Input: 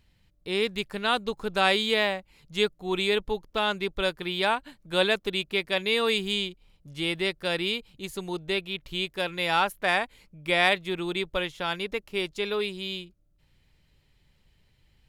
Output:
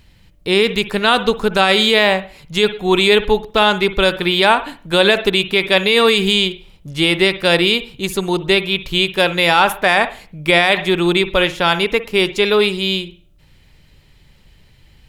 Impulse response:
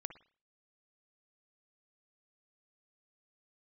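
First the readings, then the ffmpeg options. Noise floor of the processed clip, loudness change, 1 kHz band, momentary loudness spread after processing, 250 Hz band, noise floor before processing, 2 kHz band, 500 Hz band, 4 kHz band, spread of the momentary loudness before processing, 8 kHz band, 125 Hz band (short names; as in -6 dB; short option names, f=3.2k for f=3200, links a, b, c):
-50 dBFS, +12.5 dB, +11.5 dB, 7 LU, +14.0 dB, -66 dBFS, +12.0 dB, +13.0 dB, +12.5 dB, 11 LU, +13.0 dB, +14.0 dB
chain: -filter_complex "[0:a]asplit=2[a][b];[1:a]atrim=start_sample=2205[c];[b][c]afir=irnorm=-1:irlink=0,volume=6dB[d];[a][d]amix=inputs=2:normalize=0,alimiter=level_in=8.5dB:limit=-1dB:release=50:level=0:latency=1,volume=-1dB"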